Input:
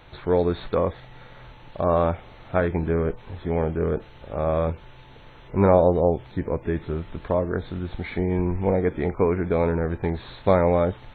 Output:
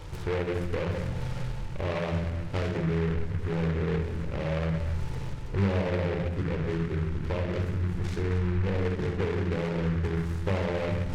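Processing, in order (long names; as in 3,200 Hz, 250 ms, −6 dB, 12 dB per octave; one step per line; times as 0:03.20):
reversed playback
upward compression, threshold −24 dBFS
reversed playback
rectangular room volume 2,300 cubic metres, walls furnished, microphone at 4.4 metres
downward compressor 2.5 to 1, threshold −30 dBFS, peak gain reduction 15.5 dB
low-shelf EQ 390 Hz +8 dB
short delay modulated by noise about 1,400 Hz, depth 0.11 ms
level −6.5 dB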